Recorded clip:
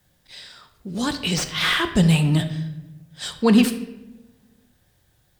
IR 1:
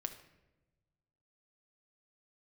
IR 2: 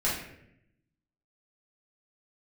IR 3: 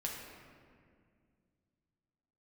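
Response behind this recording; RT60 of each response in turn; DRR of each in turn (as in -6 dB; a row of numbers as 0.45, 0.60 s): 1; not exponential, 0.75 s, 2.1 s; 6.5, -8.0, -2.5 dB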